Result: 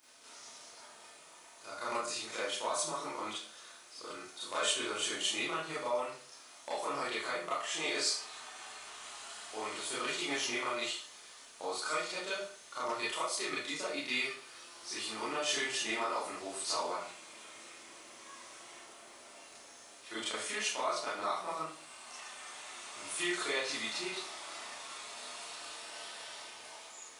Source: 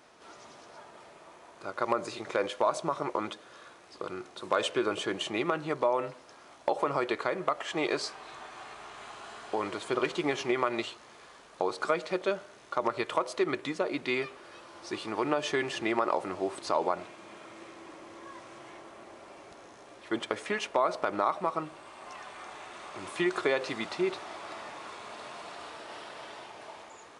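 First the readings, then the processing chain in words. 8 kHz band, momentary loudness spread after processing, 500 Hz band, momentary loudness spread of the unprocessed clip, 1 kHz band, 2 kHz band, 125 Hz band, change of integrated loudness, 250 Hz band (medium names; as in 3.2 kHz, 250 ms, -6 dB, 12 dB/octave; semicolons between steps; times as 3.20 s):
+9.0 dB, 18 LU, -9.0 dB, 20 LU, -6.0 dB, -1.5 dB, -12.5 dB, -4.5 dB, -10.5 dB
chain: pre-emphasis filter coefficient 0.9; Schroeder reverb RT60 0.42 s, combs from 25 ms, DRR -9 dB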